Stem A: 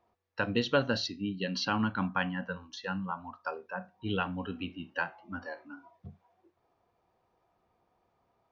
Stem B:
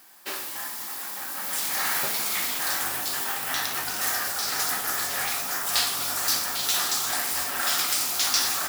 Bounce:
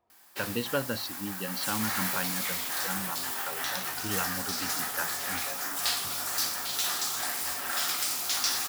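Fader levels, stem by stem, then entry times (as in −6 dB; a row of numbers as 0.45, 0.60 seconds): −3.0, −5.0 decibels; 0.00, 0.10 seconds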